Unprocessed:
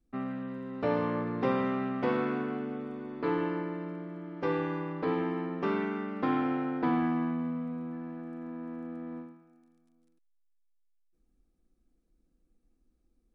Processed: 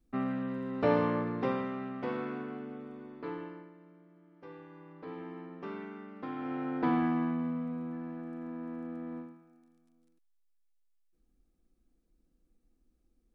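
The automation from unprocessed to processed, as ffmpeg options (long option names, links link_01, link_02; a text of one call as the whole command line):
ffmpeg -i in.wav -af "volume=21dB,afade=type=out:start_time=0.9:duration=0.78:silence=0.354813,afade=type=out:start_time=3.02:duration=0.71:silence=0.237137,afade=type=in:start_time=4.69:duration=0.68:silence=0.398107,afade=type=in:start_time=6.36:duration=0.46:silence=0.298538" out.wav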